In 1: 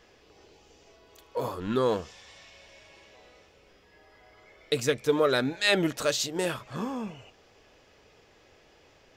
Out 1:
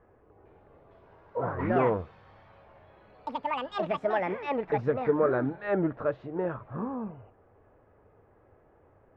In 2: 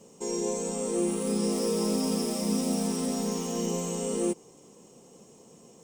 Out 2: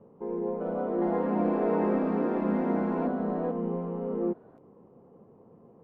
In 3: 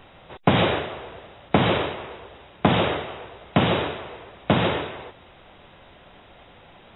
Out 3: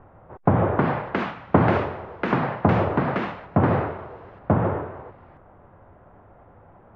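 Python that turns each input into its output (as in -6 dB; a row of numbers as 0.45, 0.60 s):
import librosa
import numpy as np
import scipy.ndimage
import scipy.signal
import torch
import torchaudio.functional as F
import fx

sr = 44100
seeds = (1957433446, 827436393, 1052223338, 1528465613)

y = scipy.signal.sosfilt(scipy.signal.butter(4, 1400.0, 'lowpass', fs=sr, output='sos'), x)
y = fx.peak_eq(y, sr, hz=97.0, db=8.0, octaves=0.53)
y = fx.echo_pitch(y, sr, ms=455, semitones=6, count=2, db_per_echo=-3.0)
y = y * librosa.db_to_amplitude(-1.0)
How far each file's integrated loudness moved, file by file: -2.0, 0.0, 0.0 LU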